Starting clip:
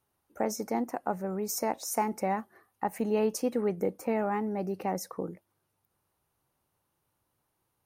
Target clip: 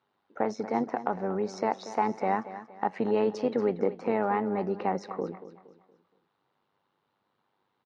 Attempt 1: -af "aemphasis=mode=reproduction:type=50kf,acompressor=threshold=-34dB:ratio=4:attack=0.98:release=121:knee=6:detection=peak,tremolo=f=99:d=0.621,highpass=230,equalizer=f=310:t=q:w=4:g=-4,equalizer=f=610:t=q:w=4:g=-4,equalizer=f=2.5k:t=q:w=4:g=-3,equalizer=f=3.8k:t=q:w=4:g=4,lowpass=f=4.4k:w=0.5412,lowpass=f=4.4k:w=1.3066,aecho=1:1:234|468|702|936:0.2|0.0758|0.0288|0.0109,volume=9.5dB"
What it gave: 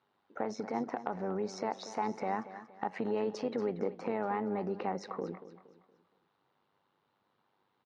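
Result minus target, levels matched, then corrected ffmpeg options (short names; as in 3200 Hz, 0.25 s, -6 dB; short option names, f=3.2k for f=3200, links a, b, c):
compressor: peak gain reduction +8 dB
-af "aemphasis=mode=reproduction:type=50kf,acompressor=threshold=-23.5dB:ratio=4:attack=0.98:release=121:knee=6:detection=peak,tremolo=f=99:d=0.621,highpass=230,equalizer=f=310:t=q:w=4:g=-4,equalizer=f=610:t=q:w=4:g=-4,equalizer=f=2.5k:t=q:w=4:g=-3,equalizer=f=3.8k:t=q:w=4:g=4,lowpass=f=4.4k:w=0.5412,lowpass=f=4.4k:w=1.3066,aecho=1:1:234|468|702|936:0.2|0.0758|0.0288|0.0109,volume=9.5dB"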